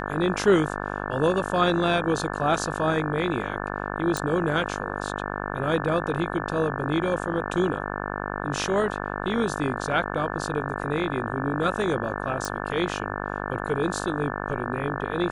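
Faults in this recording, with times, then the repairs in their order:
buzz 50 Hz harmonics 35 -31 dBFS
4.17 pop
12.45 pop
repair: de-click; de-hum 50 Hz, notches 35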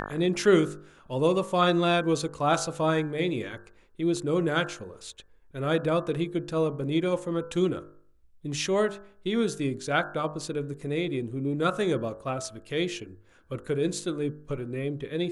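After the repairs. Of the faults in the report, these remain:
none

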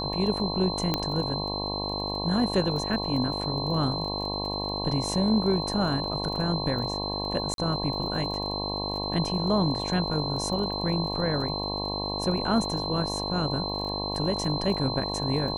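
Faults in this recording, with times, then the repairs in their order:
buzz 50 Hz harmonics 22 -33 dBFS
crackle 22/s -35 dBFS
tone 4100 Hz -32 dBFS
0.94 pop -10 dBFS
7.54–7.58 gap 42 ms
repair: de-click; de-hum 50 Hz, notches 22; notch 4100 Hz, Q 30; interpolate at 7.54, 42 ms

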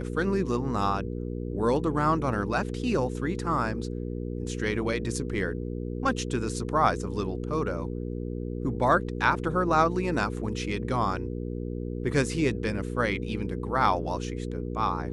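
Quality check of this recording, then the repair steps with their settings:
hum 60 Hz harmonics 8 -33 dBFS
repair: de-hum 60 Hz, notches 8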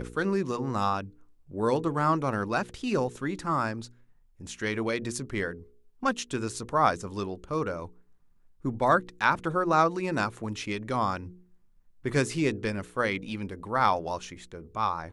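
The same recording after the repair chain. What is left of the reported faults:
none

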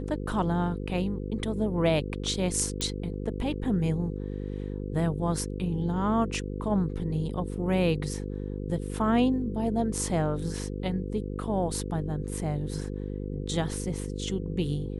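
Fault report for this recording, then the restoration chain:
buzz 50 Hz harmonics 10 -34 dBFS
2.81 pop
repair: de-click; de-hum 50 Hz, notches 10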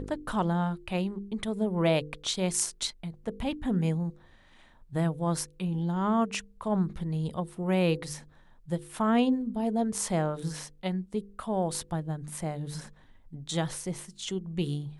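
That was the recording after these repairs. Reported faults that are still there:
none

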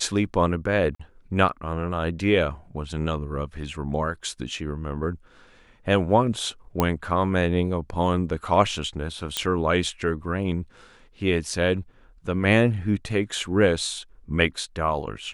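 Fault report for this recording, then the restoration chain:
0.95–0.99 gap 45 ms
6.8 pop -7 dBFS
9.37 pop -7 dBFS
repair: de-click; interpolate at 0.95, 45 ms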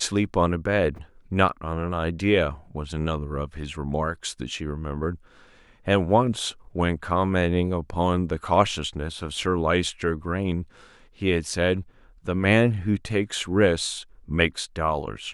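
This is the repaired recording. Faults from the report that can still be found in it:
none

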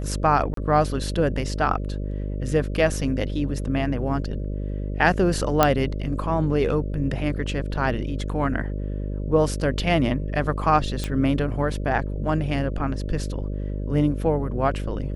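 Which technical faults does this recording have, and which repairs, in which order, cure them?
buzz 50 Hz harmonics 12 -28 dBFS
0.54–0.57 gap 33 ms
5.63 pop -2 dBFS
11.04 pop -13 dBFS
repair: de-click; de-hum 50 Hz, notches 12; interpolate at 0.54, 33 ms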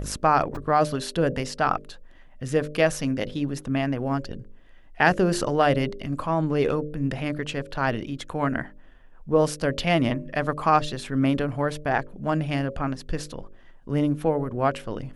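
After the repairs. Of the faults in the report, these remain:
none

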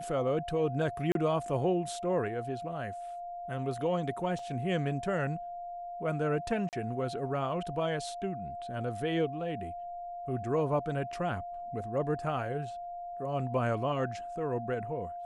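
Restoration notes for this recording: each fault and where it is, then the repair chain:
tone 700 Hz -38 dBFS
1.12–1.15 gap 32 ms
4.39 gap 2.6 ms
6.69–6.73 gap 38 ms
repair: notch 700 Hz, Q 30; interpolate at 1.12, 32 ms; interpolate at 4.39, 2.6 ms; interpolate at 6.69, 38 ms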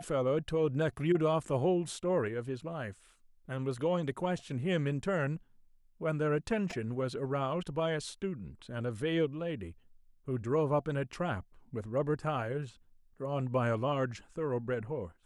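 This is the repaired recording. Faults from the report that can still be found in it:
none

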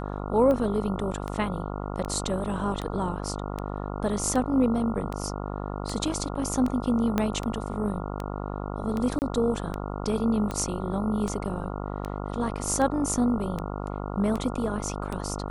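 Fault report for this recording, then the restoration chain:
buzz 50 Hz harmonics 28 -33 dBFS
tick 78 rpm -18 dBFS
7.18 pop -11 dBFS
9.19–9.22 gap 29 ms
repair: de-click; de-hum 50 Hz, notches 28; interpolate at 9.19, 29 ms

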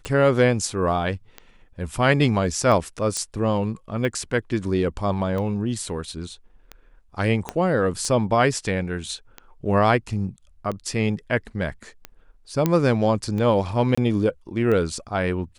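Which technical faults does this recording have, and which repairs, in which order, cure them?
tick 45 rpm -18 dBFS
3.17 pop -12 dBFS
7.49 pop -12 dBFS
12.66 pop -7 dBFS
13.95–13.97 gap 25 ms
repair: de-click; interpolate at 13.95, 25 ms

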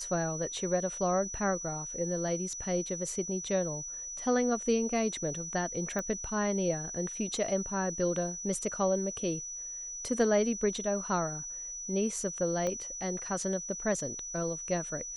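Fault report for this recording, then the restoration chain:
tone 5900 Hz -38 dBFS
5.99 pop -21 dBFS
12.67 pop -21 dBFS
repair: de-click; notch 5900 Hz, Q 30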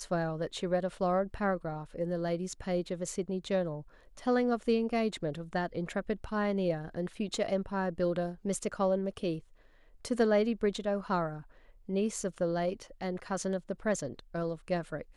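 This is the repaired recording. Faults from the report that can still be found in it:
12.67 pop

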